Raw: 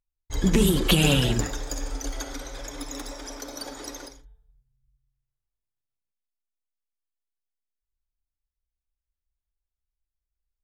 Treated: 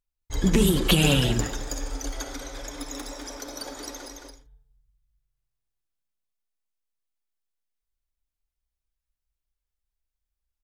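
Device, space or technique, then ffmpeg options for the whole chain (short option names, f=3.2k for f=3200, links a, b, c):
ducked delay: -filter_complex "[0:a]asplit=3[a][b][c];[b]adelay=218,volume=-4dB[d];[c]apad=whole_len=478596[e];[d][e]sidechaincompress=threshold=-42dB:ratio=8:attack=31:release=183[f];[a][f]amix=inputs=2:normalize=0"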